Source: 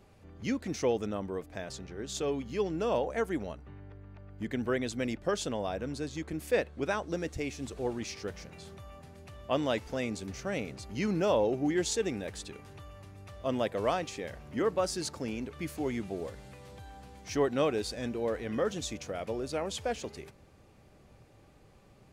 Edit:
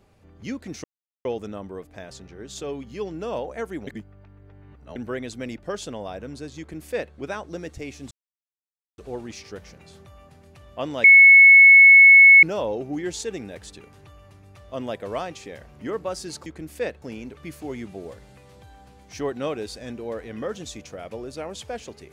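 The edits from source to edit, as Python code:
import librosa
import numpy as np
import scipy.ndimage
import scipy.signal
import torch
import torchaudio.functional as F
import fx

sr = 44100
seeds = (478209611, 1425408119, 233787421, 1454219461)

y = fx.edit(x, sr, fx.insert_silence(at_s=0.84, length_s=0.41),
    fx.reverse_span(start_s=3.46, length_s=1.09),
    fx.duplicate(start_s=6.18, length_s=0.56, to_s=15.18),
    fx.insert_silence(at_s=7.7, length_s=0.87),
    fx.bleep(start_s=9.76, length_s=1.39, hz=2200.0, db=-6.5), tone=tone)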